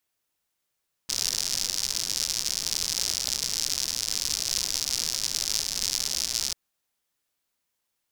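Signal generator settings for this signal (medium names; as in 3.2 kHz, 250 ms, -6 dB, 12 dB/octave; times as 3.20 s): rain from filtered ticks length 5.44 s, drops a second 120, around 5.3 kHz, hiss -15.5 dB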